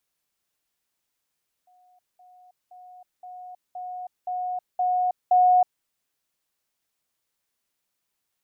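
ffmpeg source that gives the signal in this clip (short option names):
-f lavfi -i "aevalsrc='pow(10,(-56+6*floor(t/0.52))/20)*sin(2*PI*728*t)*clip(min(mod(t,0.52),0.32-mod(t,0.52))/0.005,0,1)':d=4.16:s=44100"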